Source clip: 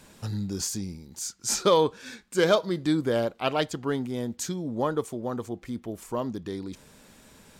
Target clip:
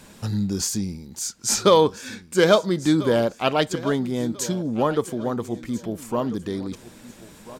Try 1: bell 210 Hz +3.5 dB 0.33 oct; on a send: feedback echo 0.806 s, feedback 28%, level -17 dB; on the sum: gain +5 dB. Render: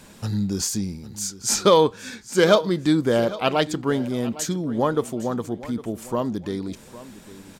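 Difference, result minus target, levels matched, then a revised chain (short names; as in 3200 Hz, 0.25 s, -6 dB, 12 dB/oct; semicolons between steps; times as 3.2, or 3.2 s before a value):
echo 0.536 s early
bell 210 Hz +3.5 dB 0.33 oct; on a send: feedback echo 1.342 s, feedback 28%, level -17 dB; on the sum: gain +5 dB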